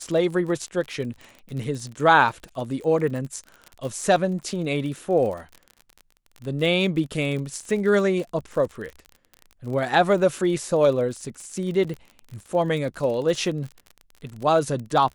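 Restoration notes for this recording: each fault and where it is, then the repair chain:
crackle 38/s -31 dBFS
2.44 pop
11.84–11.85 gap 5.7 ms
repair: de-click; interpolate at 11.84, 5.7 ms

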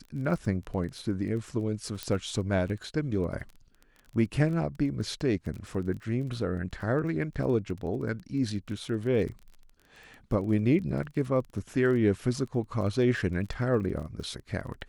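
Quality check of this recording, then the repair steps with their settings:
crackle 21/s -37 dBFS
2.03 pop -17 dBFS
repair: de-click

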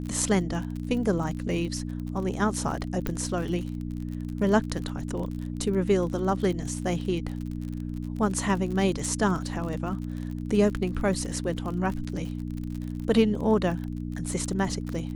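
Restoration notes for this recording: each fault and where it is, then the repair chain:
crackle 44/s -33 dBFS
hum 60 Hz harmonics 5 -33 dBFS
3.07 pop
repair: de-click; de-hum 60 Hz, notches 5

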